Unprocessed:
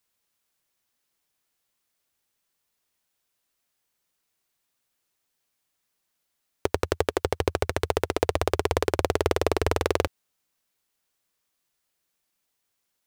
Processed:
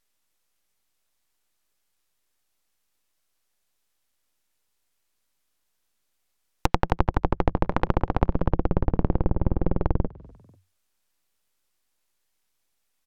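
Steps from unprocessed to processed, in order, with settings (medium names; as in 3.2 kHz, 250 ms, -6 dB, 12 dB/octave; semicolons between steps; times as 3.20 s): full-wave rectifier; low-pass that closes with the level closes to 350 Hz, closed at -20.5 dBFS; frequency-shifting echo 245 ms, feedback 38%, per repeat +46 Hz, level -24 dB; trim +4.5 dB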